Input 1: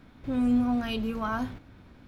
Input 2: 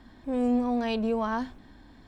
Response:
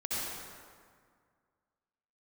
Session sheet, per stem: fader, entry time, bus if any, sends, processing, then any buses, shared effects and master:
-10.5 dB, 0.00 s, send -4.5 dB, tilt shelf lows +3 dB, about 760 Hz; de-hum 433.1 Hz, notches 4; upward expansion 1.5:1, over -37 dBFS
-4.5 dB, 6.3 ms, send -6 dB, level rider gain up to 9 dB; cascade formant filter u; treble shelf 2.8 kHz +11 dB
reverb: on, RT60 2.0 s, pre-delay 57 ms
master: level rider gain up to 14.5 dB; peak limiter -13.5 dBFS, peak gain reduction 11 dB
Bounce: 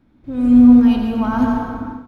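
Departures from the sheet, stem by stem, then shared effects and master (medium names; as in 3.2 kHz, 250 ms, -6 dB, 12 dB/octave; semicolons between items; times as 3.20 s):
stem 1 -10.5 dB -> -2.0 dB; master: missing peak limiter -13.5 dBFS, peak gain reduction 11 dB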